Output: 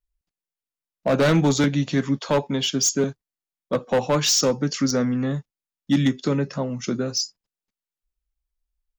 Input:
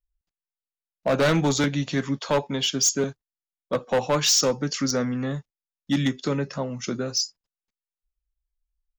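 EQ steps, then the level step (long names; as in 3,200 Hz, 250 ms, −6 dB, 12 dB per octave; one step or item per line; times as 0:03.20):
parametric band 210 Hz +4.5 dB 2.2 octaves
0.0 dB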